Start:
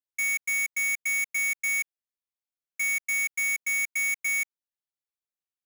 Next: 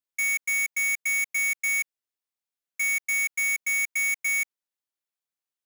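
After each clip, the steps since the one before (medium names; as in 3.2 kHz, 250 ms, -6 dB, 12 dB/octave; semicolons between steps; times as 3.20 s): high-pass 180 Hz 6 dB/octave; trim +1.5 dB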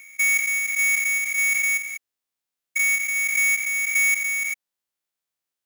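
spectrogram pixelated in time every 200 ms; trim +6.5 dB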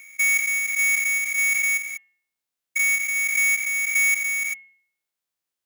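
de-hum 198 Hz, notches 17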